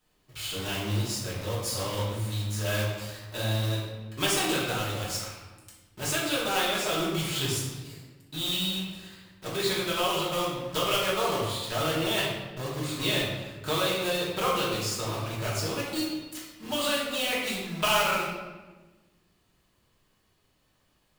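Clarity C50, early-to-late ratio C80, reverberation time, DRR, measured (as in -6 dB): 1.0 dB, 3.5 dB, 1.3 s, -7.5 dB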